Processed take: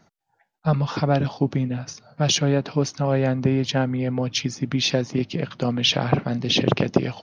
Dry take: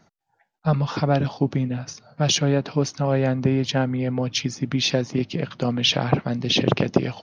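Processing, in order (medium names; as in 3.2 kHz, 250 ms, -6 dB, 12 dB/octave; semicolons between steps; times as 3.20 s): 5.97–6.58 s: doubling 43 ms -13 dB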